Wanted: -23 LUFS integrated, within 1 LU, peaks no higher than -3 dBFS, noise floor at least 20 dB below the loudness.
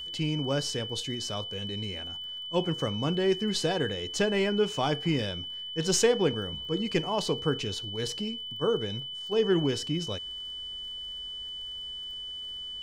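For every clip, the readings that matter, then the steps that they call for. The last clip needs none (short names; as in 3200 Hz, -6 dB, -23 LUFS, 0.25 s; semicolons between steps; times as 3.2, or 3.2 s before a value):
ticks 25/s; steady tone 3000 Hz; tone level -36 dBFS; loudness -30.0 LUFS; peak -12.5 dBFS; loudness target -23.0 LUFS
-> de-click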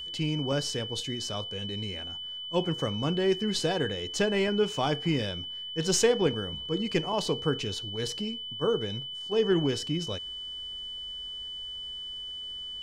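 ticks 0/s; steady tone 3000 Hz; tone level -36 dBFS
-> notch 3000 Hz, Q 30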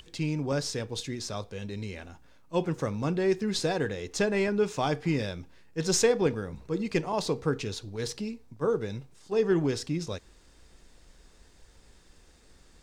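steady tone none; loudness -30.0 LUFS; peak -12.0 dBFS; loudness target -23.0 LUFS
-> gain +7 dB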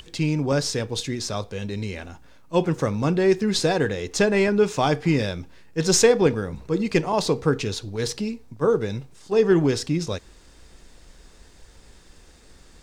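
loudness -23.0 LUFS; peak -5.0 dBFS; noise floor -51 dBFS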